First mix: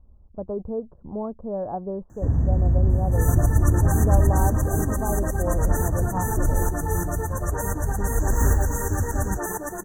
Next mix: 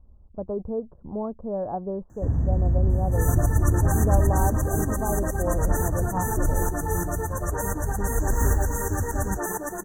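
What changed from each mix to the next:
first sound: send −11.0 dB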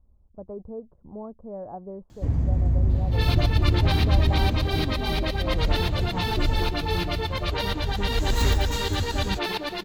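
speech −7.5 dB
second sound: add high shelf with overshoot 5,500 Hz −12 dB, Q 3
master: remove linear-phase brick-wall band-stop 1,900–5,800 Hz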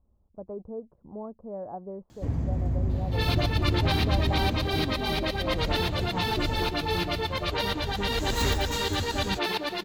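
master: add low-shelf EQ 76 Hz −11.5 dB

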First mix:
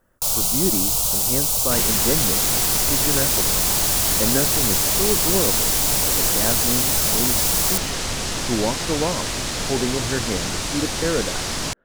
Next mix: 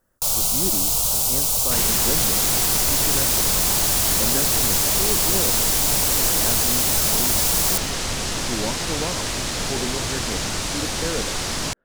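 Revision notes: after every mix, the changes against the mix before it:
speech −6.0 dB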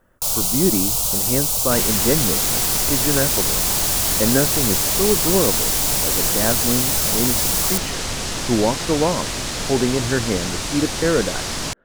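speech +10.5 dB

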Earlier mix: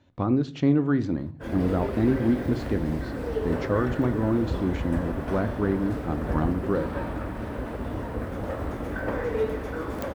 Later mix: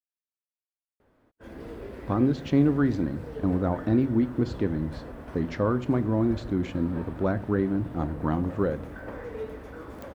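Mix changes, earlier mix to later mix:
speech: entry +1.90 s
background −9.5 dB

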